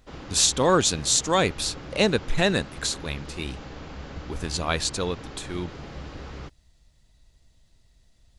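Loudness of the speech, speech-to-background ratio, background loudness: -24.5 LUFS, 16.0 dB, -40.5 LUFS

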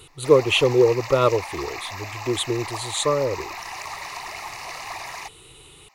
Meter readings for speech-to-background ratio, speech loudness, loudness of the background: 12.0 dB, -21.5 LUFS, -33.5 LUFS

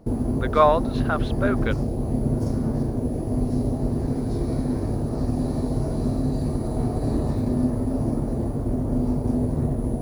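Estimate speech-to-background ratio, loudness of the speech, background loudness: 2.0 dB, -23.5 LUFS, -25.5 LUFS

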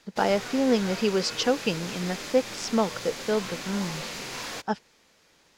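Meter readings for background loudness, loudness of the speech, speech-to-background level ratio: -35.5 LUFS, -27.5 LUFS, 8.0 dB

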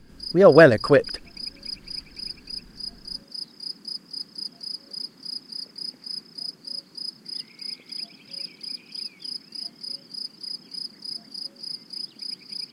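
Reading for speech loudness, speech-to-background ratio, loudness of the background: -16.0 LUFS, 17.5 dB, -33.5 LUFS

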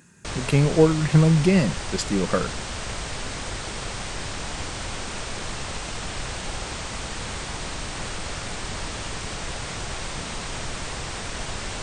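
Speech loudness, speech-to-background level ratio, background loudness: -20.5 LUFS, 11.0 dB, -31.5 LUFS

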